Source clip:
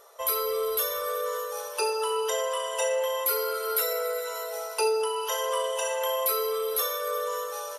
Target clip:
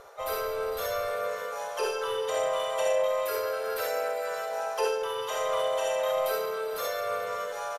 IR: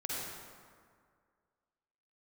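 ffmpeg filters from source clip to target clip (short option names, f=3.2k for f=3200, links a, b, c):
-filter_complex "[0:a]aemphasis=mode=reproduction:type=bsi,asplit=2[a][b];[b]asoftclip=type=tanh:threshold=-29.5dB,volume=-5dB[c];[a][c]amix=inputs=2:normalize=0,asplit=2[d][e];[e]adelay=100,highpass=300,lowpass=3.4k,asoftclip=type=hard:threshold=-24.5dB,volume=-18dB[f];[d][f]amix=inputs=2:normalize=0[g];[1:a]atrim=start_sample=2205,afade=t=out:st=0.13:d=0.01,atrim=end_sample=6174[h];[g][h]afir=irnorm=-1:irlink=0,asplit=3[i][j][k];[j]asetrate=52444,aresample=44100,atempo=0.840896,volume=-4dB[l];[k]asetrate=88200,aresample=44100,atempo=0.5,volume=-18dB[m];[i][l][m]amix=inputs=3:normalize=0,areverse,acompressor=mode=upward:threshold=-30dB:ratio=2.5,areverse,volume=-2.5dB"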